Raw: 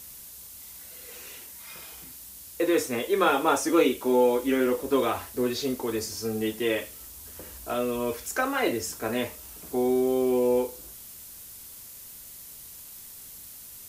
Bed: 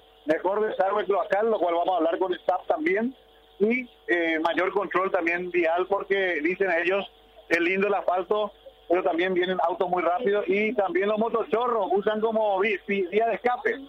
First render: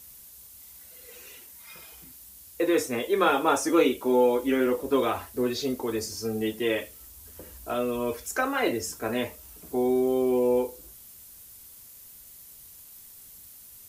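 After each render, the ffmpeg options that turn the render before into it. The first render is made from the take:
-af "afftdn=nr=6:nf=-45"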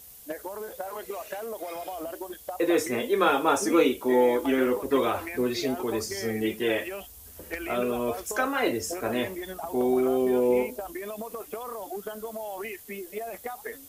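-filter_complex "[1:a]volume=-12.5dB[a];[0:a][a]amix=inputs=2:normalize=0"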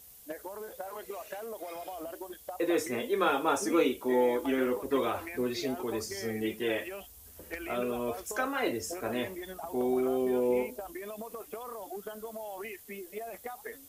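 -af "volume=-5dB"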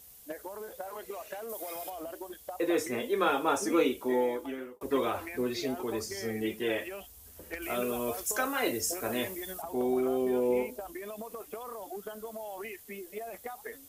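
-filter_complex "[0:a]asettb=1/sr,asplit=3[a][b][c];[a]atrim=end=1.494[d];[b]atrim=start=1.49:end=1.9,asetpts=PTS-STARTPTS,afade=t=in:d=0.004:c=qsin,afade=t=out:st=0.406:d=0.004:c=qsin,highshelf=f=5.8k:g=11[e];[c]atrim=start=1.896[f];[d][e]acrossfade=d=0.004:c1=hsin:c2=qsin[g];[g][f]acrossfade=d=0.004:c1=qsin:c2=hsin,asettb=1/sr,asplit=3[h][i][j];[h]atrim=end=7.624[k];[i]atrim=start=7.62:end=9.62,asetpts=PTS-STARTPTS,afade=t=in:d=0.004:c=qsin,afade=t=out:st=1.996:d=0.004:c=qsin,highshelf=f=4.8k:g=10.5[l];[j]atrim=start=9.616[m];[k][l]acrossfade=d=0.004:c1=hsin:c2=qsin[n];[n][m]acrossfade=d=0.004:c1=qsin:c2=hsin,asplit=2[o][p];[o]atrim=end=4.81,asetpts=PTS-STARTPTS,afade=t=out:st=4.04:d=0.77[q];[p]atrim=start=4.81,asetpts=PTS-STARTPTS,afade=t=in:d=0.004:c=hsin[r];[q][r]concat=n=2:v=0:a=1"

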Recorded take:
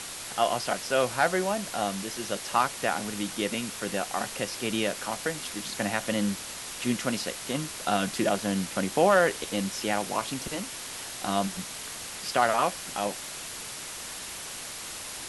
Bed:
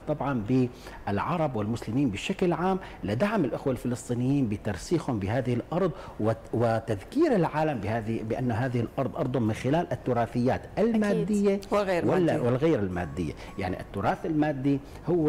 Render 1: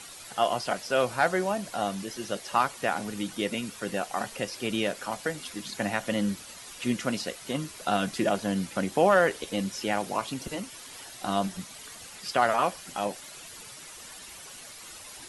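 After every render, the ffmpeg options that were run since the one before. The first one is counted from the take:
-af "afftdn=nr=10:nf=-39"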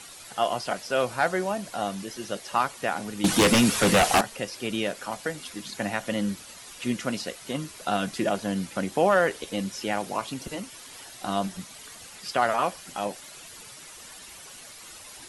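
-filter_complex "[0:a]asettb=1/sr,asplit=3[a][b][c];[a]atrim=end=3.244[d];[b]atrim=start=3.24:end=4.21,asetpts=PTS-STARTPTS,afade=t=in:d=0.004:c=qsin,afade=t=out:st=0.966:d=0.004:c=qsin,aeval=exprs='0.2*sin(PI/2*4.47*val(0)/0.2)':c=same[e];[c]atrim=start=4.206[f];[d][e]acrossfade=d=0.004:c1=hsin:c2=qsin[g];[g][f]acrossfade=d=0.004:c1=qsin:c2=hsin"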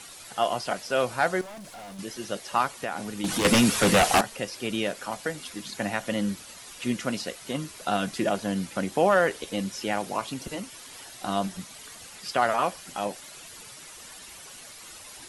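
-filter_complex "[0:a]asettb=1/sr,asplit=3[a][b][c];[a]atrim=end=1.414[d];[b]atrim=start=1.41:end=1.99,asetpts=PTS-STARTPTS,afade=t=in:d=0.004:c=qsin,afade=t=out:st=0.576:d=0.004:c=qsin,aeval=exprs='(tanh(100*val(0)+0.1)-tanh(0.1))/100':c=same[e];[c]atrim=start=1.986[f];[d][e]acrossfade=d=0.004:c1=hsin:c2=qsin[g];[g][f]acrossfade=d=0.004:c1=qsin:c2=hsin,asettb=1/sr,asplit=3[h][i][j];[h]atrim=end=2.734[k];[i]atrim=start=2.73:end=3.45,asetpts=PTS-STARTPTS,afade=t=in:d=0.004:c=qsin,afade=t=out:st=0.716:d=0.004:c=qsin,acompressor=threshold=-26dB:ratio=3:attack=3.2:release=140:knee=1:detection=peak[l];[j]atrim=start=3.446[m];[k][l]acrossfade=d=0.004:c1=hsin:c2=qsin[n];[n][m]acrossfade=d=0.004:c1=qsin:c2=hsin"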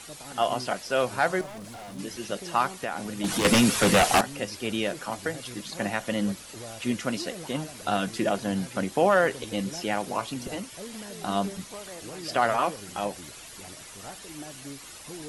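-filter_complex "[1:a]volume=-17dB[a];[0:a][a]amix=inputs=2:normalize=0"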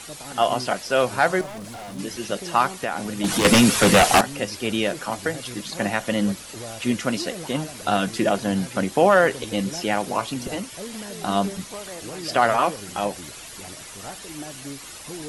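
-af "volume=5dB"

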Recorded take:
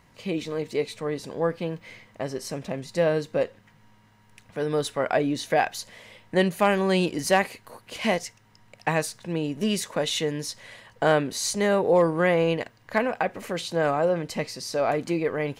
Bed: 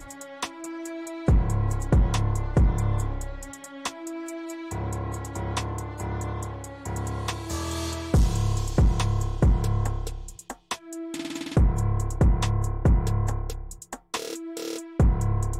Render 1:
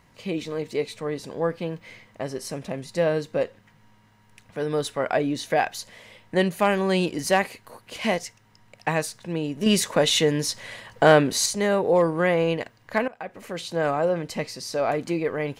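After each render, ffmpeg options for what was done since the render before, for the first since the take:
-filter_complex "[0:a]asettb=1/sr,asplit=3[a][b][c];[a]atrim=end=2.254[d];[b]atrim=start=2.25:end=2.91,asetpts=PTS-STARTPTS,afade=t=in:d=0.004:c=qsin,afade=t=out:st=0.656:d=0.004:c=qsin,equalizer=f=10k:w=5.6:g=6.5[e];[c]atrim=start=2.906[f];[d][e]acrossfade=d=0.004:c1=hsin:c2=qsin[g];[g][f]acrossfade=d=0.004:c1=qsin:c2=hsin,asettb=1/sr,asplit=3[h][i][j];[h]atrim=end=9.664[k];[i]atrim=start=9.66:end=11.46,asetpts=PTS-STARTPTS,afade=t=in:d=0.004:c=qsin,afade=t=out:st=1.796:d=0.004:c=qsin,acontrast=60[l];[j]atrim=start=11.456[m];[k][l]acrossfade=d=0.004:c1=hsin:c2=qsin[n];[n][m]acrossfade=d=0.004:c1=qsin:c2=hsin,asplit=2[o][p];[o]atrim=end=13.08,asetpts=PTS-STARTPTS,afade=t=out:st=13.076:d=0.004:c=hsin:silence=0.1[q];[p]atrim=start=13.08,asetpts=PTS-STARTPTS,afade=t=in:d=0.95:c=qsin:silence=0.1[r];[q][r]concat=n=2:v=0:a=1"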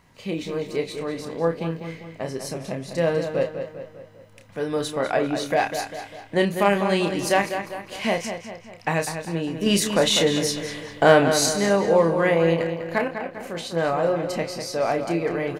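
-filter_complex "[0:a]asplit=2[a][b];[b]adelay=30,volume=-6.5dB[c];[a][c]amix=inputs=2:normalize=0,asplit=2[d][e];[e]adelay=199,lowpass=f=4.4k:p=1,volume=-8dB,asplit=2[f][g];[g]adelay=199,lowpass=f=4.4k:p=1,volume=0.5,asplit=2[h][i];[i]adelay=199,lowpass=f=4.4k:p=1,volume=0.5,asplit=2[j][k];[k]adelay=199,lowpass=f=4.4k:p=1,volume=0.5,asplit=2[l][m];[m]adelay=199,lowpass=f=4.4k:p=1,volume=0.5,asplit=2[n][o];[o]adelay=199,lowpass=f=4.4k:p=1,volume=0.5[p];[f][h][j][l][n][p]amix=inputs=6:normalize=0[q];[d][q]amix=inputs=2:normalize=0"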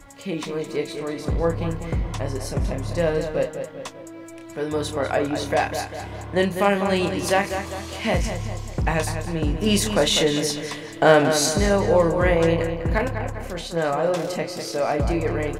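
-filter_complex "[1:a]volume=-5dB[a];[0:a][a]amix=inputs=2:normalize=0"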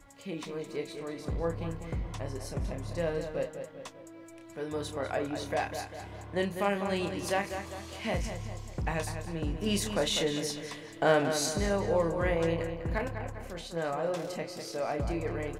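-af "volume=-10dB"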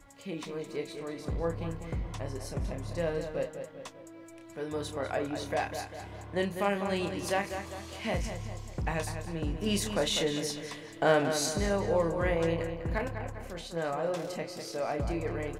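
-af anull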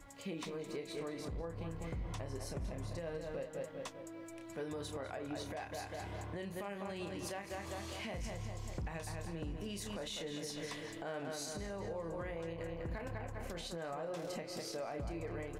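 -af "acompressor=threshold=-36dB:ratio=6,alimiter=level_in=9dB:limit=-24dB:level=0:latency=1:release=135,volume=-9dB"

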